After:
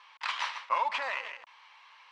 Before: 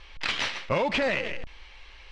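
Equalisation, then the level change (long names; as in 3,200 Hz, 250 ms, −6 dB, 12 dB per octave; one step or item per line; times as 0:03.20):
high-pass with resonance 1,000 Hz, resonance Q 4.9
−8.0 dB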